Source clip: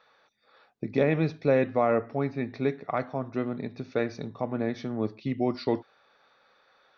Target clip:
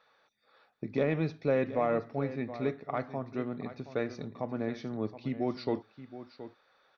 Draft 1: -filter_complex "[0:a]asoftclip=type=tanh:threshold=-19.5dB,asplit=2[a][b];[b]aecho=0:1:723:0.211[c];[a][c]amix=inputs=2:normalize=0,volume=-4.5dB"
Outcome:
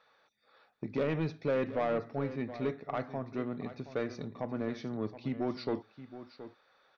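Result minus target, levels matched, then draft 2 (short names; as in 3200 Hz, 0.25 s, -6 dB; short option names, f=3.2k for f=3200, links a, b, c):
soft clip: distortion +15 dB
-filter_complex "[0:a]asoftclip=type=tanh:threshold=-9.5dB,asplit=2[a][b];[b]aecho=0:1:723:0.211[c];[a][c]amix=inputs=2:normalize=0,volume=-4.5dB"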